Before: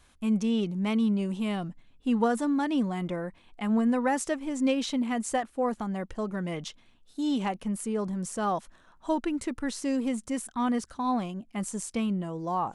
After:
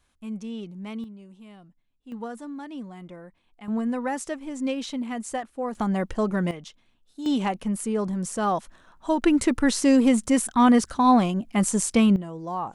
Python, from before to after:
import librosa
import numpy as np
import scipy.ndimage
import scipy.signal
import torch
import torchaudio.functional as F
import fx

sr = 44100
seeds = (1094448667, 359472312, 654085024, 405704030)

y = fx.gain(x, sr, db=fx.steps((0.0, -8.0), (1.04, -17.0), (2.12, -10.0), (3.68, -2.0), (5.75, 7.5), (6.51, -4.5), (7.26, 4.0), (9.22, 10.5), (12.16, -1.0)))